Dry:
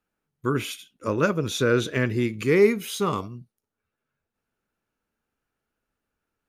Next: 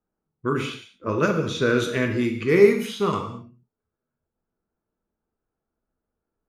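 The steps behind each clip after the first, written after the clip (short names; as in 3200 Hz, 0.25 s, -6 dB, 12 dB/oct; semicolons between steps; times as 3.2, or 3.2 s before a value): low-pass opened by the level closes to 900 Hz, open at -18.5 dBFS; non-linear reverb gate 0.25 s falling, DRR 3.5 dB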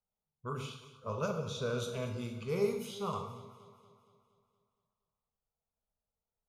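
fixed phaser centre 760 Hz, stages 4; echo with dull and thin repeats by turns 0.117 s, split 1100 Hz, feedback 73%, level -13 dB; gain -8.5 dB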